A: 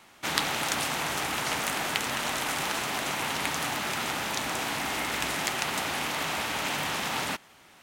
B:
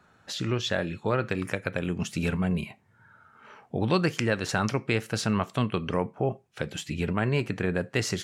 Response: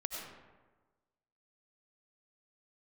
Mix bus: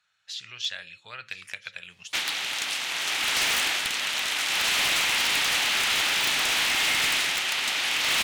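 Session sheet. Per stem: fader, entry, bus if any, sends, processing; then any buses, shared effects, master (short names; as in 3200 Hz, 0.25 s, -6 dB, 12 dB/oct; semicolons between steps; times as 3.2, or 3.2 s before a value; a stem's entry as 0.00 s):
+2.0 dB, 1.90 s, no send, no echo send, gate -52 dBFS, range -20 dB; low shelf 440 Hz -8.5 dB
-10.5 dB, 0.00 s, no send, echo send -20 dB, passive tone stack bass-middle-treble 10-0-10; de-hum 67.87 Hz, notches 8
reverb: off
echo: echo 1.016 s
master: weighting filter D; AGC gain up to 4 dB; wavefolder -18 dBFS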